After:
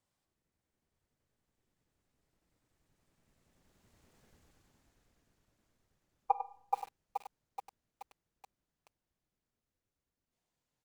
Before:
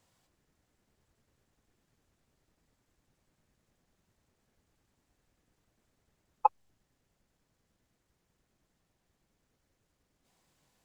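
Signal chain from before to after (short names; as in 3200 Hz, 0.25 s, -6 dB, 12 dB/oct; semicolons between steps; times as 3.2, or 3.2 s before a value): Doppler pass-by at 4.21, 21 m/s, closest 9 m; on a send: echo 98 ms -10 dB; on the sum: Schroeder reverb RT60 0.61 s, combs from 26 ms, DRR 14.5 dB; lo-fi delay 0.427 s, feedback 55%, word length 10-bit, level -3 dB; gain +8 dB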